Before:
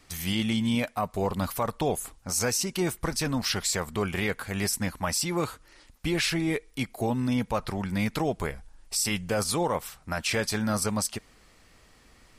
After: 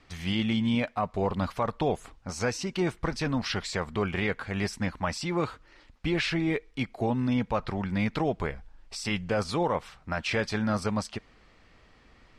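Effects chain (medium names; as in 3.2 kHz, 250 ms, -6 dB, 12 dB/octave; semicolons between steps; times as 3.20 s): low-pass 3.7 kHz 12 dB/octave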